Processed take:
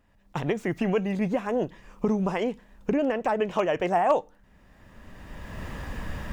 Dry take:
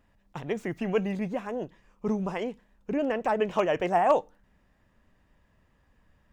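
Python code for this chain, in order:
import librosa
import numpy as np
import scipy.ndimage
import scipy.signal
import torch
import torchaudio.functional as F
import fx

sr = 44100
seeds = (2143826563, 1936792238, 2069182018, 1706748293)

y = fx.recorder_agc(x, sr, target_db=-16.5, rise_db_per_s=20.0, max_gain_db=30)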